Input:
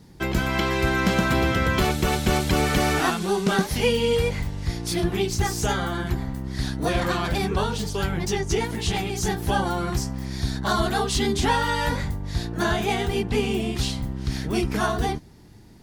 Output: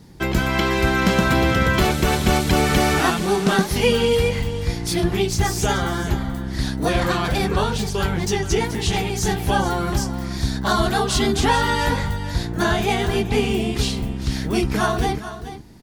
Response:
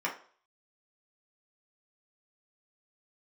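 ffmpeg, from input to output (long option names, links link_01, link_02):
-af "aecho=1:1:430:0.237,volume=3.5dB"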